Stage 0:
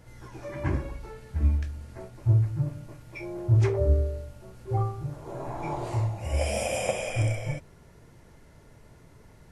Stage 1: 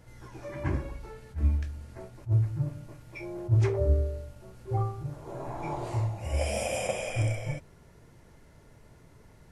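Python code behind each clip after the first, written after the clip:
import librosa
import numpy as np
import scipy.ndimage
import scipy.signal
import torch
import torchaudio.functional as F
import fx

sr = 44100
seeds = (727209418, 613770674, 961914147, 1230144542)

y = fx.attack_slew(x, sr, db_per_s=330.0)
y = y * librosa.db_to_amplitude(-2.0)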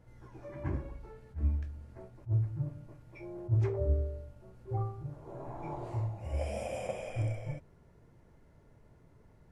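y = fx.high_shelf(x, sr, hz=2000.0, db=-11.0)
y = y * librosa.db_to_amplitude(-5.0)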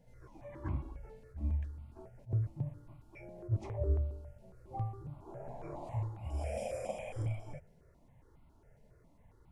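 y = fx.phaser_held(x, sr, hz=7.3, low_hz=330.0, high_hz=1700.0)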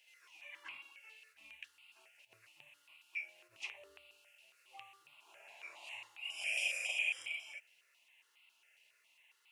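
y = fx.highpass_res(x, sr, hz=2700.0, q=8.9)
y = y * librosa.db_to_amplitude(7.5)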